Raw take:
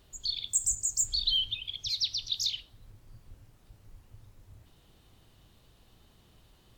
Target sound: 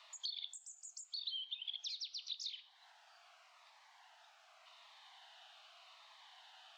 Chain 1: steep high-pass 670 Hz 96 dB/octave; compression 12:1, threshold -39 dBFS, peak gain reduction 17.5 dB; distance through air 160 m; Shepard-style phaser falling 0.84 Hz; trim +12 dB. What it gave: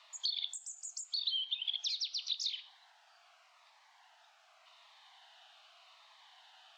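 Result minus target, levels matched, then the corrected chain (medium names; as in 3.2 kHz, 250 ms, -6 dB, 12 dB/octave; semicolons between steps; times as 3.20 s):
compression: peak gain reduction -8 dB
steep high-pass 670 Hz 96 dB/octave; compression 12:1, threshold -47.5 dBFS, peak gain reduction 25 dB; distance through air 160 m; Shepard-style phaser falling 0.84 Hz; trim +12 dB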